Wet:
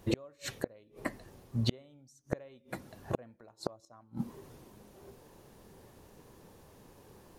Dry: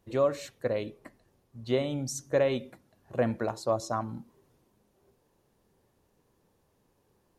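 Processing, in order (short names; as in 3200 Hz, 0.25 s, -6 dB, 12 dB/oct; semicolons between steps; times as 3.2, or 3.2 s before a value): flipped gate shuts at -29 dBFS, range -39 dB; gain +13.5 dB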